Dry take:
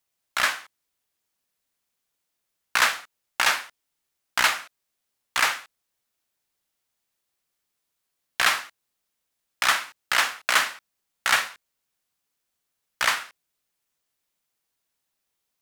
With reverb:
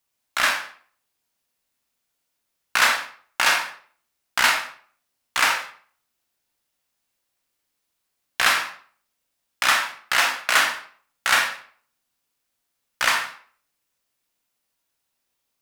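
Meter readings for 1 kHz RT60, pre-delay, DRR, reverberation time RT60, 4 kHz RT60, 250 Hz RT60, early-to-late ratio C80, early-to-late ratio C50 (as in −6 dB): 0.50 s, 24 ms, 2.0 dB, 0.50 s, 0.40 s, 0.50 s, 11.5 dB, 6.5 dB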